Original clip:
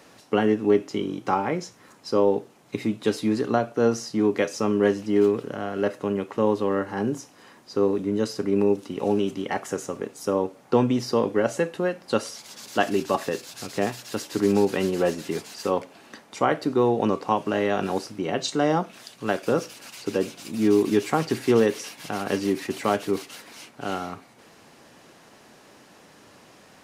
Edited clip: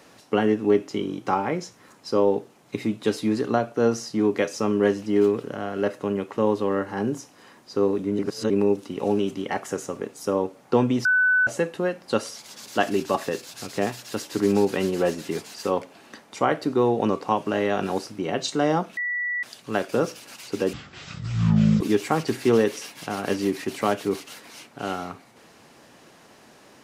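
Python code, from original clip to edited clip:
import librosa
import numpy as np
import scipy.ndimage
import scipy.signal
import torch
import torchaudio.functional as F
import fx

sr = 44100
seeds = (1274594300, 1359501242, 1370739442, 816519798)

y = fx.edit(x, sr, fx.reverse_span(start_s=8.19, length_s=0.31),
    fx.bleep(start_s=11.05, length_s=0.42, hz=1500.0, db=-16.0),
    fx.insert_tone(at_s=18.97, length_s=0.46, hz=1950.0, db=-24.0),
    fx.speed_span(start_s=20.27, length_s=0.56, speed=0.52), tone=tone)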